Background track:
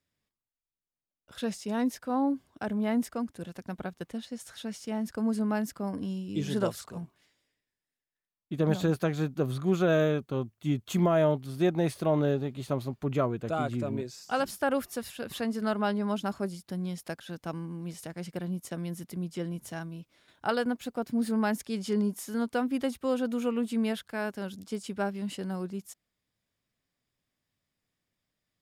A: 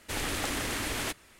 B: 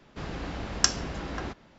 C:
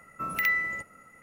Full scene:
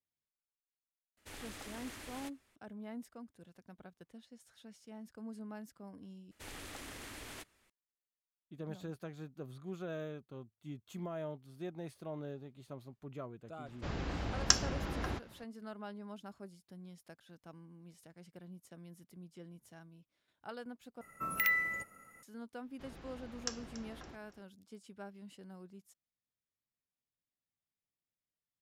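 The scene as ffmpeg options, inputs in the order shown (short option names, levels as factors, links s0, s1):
-filter_complex "[1:a]asplit=2[s0][s1];[2:a]asplit=2[s2][s3];[0:a]volume=0.133[s4];[s2]equalizer=f=87:t=o:w=0.77:g=6[s5];[3:a]equalizer=f=13000:t=o:w=0.9:g=9[s6];[s3]aecho=1:1:283|566|849:0.158|0.0523|0.0173[s7];[s4]asplit=3[s8][s9][s10];[s8]atrim=end=6.314[s11];[s1]atrim=end=1.39,asetpts=PTS-STARTPTS,volume=0.168[s12];[s9]atrim=start=7.696:end=21.014[s13];[s6]atrim=end=1.22,asetpts=PTS-STARTPTS,volume=0.531[s14];[s10]atrim=start=22.226[s15];[s0]atrim=end=1.39,asetpts=PTS-STARTPTS,volume=0.15,afade=t=in:d=0.004:c=hsin,afade=t=out:st=1.386:d=0.004:c=hsin,adelay=1170[s16];[s5]atrim=end=1.78,asetpts=PTS-STARTPTS,volume=0.631,afade=t=in:d=0.004:c=hsin,afade=t=out:st=1.776:d=0.004:c=hsin,adelay=13660[s17];[s7]atrim=end=1.78,asetpts=PTS-STARTPTS,volume=0.141,afade=t=in:d=0.004:c=hsin,afade=t=out:st=1.776:d=0.004:c=hsin,adelay=22630[s18];[s11][s12]acrossfade=d=0.004:c1=hsin:c2=hsin[s19];[s19][s13]acrossfade=d=0.004:c1=hsin:c2=hsin[s20];[s20][s14]acrossfade=d=0.004:c1=hsin:c2=hsin[s21];[s21][s15]acrossfade=d=0.004:c1=hsin:c2=hsin[s22];[s22][s16][s17][s18]amix=inputs=4:normalize=0"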